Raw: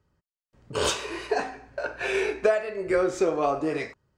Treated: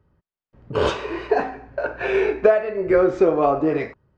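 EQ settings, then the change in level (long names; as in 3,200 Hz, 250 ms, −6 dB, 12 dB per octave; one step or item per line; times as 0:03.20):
head-to-tape spacing loss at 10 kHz 32 dB
+8.5 dB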